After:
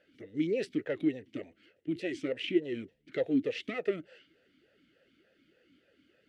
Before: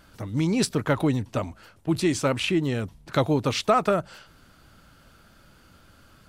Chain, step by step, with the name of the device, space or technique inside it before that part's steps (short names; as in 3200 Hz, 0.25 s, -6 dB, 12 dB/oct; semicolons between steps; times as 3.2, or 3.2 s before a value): talk box (tube stage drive 14 dB, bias 0.5; vowel sweep e-i 3.4 Hz); gain +4.5 dB